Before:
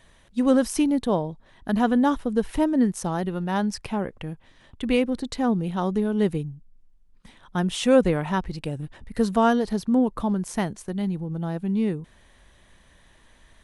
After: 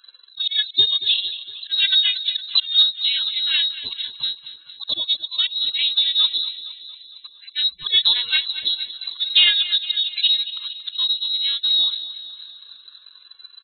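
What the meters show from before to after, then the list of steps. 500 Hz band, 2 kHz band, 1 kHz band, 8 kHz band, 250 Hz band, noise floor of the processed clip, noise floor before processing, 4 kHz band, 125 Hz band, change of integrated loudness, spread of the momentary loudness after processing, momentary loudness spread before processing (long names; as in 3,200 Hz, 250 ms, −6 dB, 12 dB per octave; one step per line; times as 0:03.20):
below −25 dB, +6.0 dB, below −15 dB, below −40 dB, below −35 dB, −50 dBFS, −57 dBFS, +25.0 dB, below −25 dB, +6.0 dB, 16 LU, 13 LU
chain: partials spread apart or drawn together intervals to 118%
comb filter 1.7 ms, depth 31%
dynamic equaliser 610 Hz, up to −4 dB, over −37 dBFS, Q 6.3
volume swells 189 ms
spectral peaks only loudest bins 64
in parallel at −4.5 dB: soft clipping −20.5 dBFS, distortion −15 dB
on the sum: transient designer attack +7 dB, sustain −7 dB
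repeating echo 230 ms, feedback 57%, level −14 dB
voice inversion scrambler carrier 4,000 Hz
level +1.5 dB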